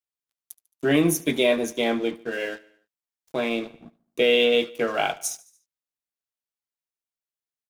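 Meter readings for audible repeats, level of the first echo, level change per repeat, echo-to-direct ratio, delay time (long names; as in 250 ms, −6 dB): 3, −21.5 dB, −4.5 dB, −20.0 dB, 73 ms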